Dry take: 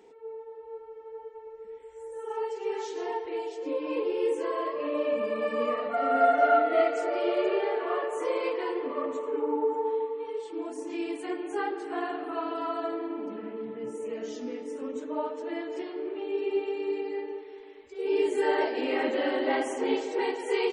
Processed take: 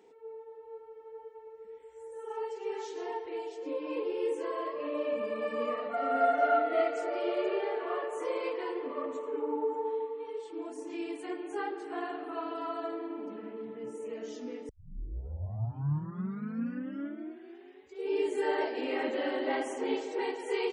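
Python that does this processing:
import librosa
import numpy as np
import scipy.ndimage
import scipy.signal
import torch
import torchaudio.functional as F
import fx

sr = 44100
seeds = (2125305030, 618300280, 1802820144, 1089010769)

y = fx.edit(x, sr, fx.tape_start(start_s=14.69, length_s=3.3), tone=tone)
y = scipy.signal.sosfilt(scipy.signal.butter(2, 57.0, 'highpass', fs=sr, output='sos'), y)
y = y * librosa.db_to_amplitude(-4.5)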